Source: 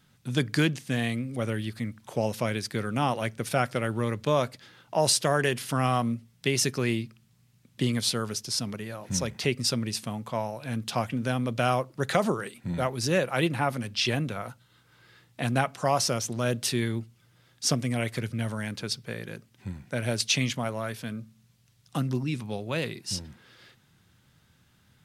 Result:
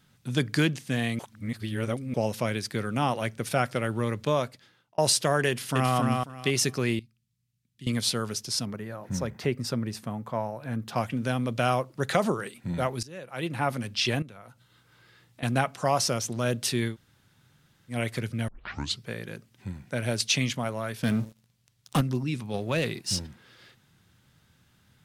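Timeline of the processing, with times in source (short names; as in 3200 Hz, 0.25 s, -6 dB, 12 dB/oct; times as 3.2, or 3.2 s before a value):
1.19–2.14 reverse
4.25–4.98 fade out
5.48–5.96 echo throw 0.27 s, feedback 20%, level -3 dB
6.99–7.87 passive tone stack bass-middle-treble 6-0-2
8.65–10.96 band shelf 5200 Hz -9 dB 2.6 oct
13.03–13.66 fade in quadratic, from -20 dB
14.22–15.43 compressor 2:1, threshold -54 dBFS
16.92–17.93 room tone, crossfade 0.10 s
18.48 tape start 0.53 s
21.03–22.01 sample leveller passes 3
22.54–23.27 sample leveller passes 1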